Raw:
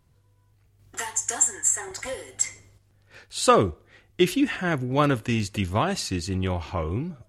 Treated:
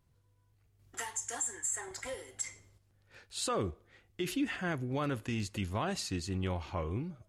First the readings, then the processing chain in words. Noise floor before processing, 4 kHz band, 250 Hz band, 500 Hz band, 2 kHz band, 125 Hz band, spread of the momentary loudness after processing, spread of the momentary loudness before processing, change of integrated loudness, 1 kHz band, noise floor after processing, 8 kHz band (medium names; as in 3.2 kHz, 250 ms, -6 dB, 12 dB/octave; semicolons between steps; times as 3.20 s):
-62 dBFS, -9.5 dB, -10.5 dB, -13.0 dB, -10.0 dB, -9.5 dB, 8 LU, 12 LU, -11.5 dB, -13.5 dB, -70 dBFS, -12.0 dB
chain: peak limiter -16.5 dBFS, peak gain reduction 11.5 dB; trim -8 dB